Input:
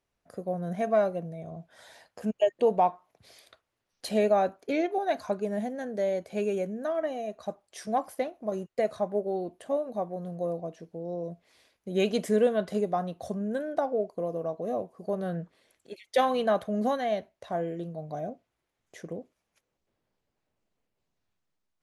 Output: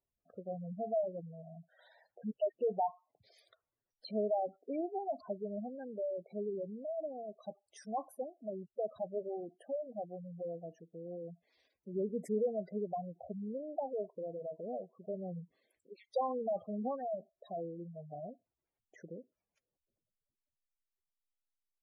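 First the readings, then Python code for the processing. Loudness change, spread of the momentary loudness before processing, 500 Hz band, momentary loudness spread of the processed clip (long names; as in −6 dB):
−10.0 dB, 15 LU, −9.5 dB, 15 LU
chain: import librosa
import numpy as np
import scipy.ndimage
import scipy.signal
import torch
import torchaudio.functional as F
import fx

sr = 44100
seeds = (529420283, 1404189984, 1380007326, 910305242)

y = fx.spec_gate(x, sr, threshold_db=-10, keep='strong')
y = F.gain(torch.from_numpy(y), -9.0).numpy()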